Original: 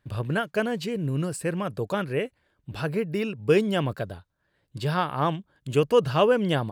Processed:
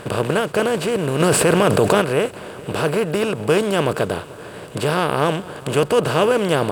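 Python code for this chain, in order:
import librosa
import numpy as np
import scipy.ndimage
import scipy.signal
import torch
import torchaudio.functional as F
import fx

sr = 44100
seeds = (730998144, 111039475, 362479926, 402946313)

y = fx.bin_compress(x, sr, power=0.4)
y = fx.high_shelf(y, sr, hz=7200.0, db=7.0)
y = fx.echo_feedback(y, sr, ms=444, feedback_pct=56, wet_db=-21)
y = fx.env_flatten(y, sr, amount_pct=70, at=(1.19, 2.0), fade=0.02)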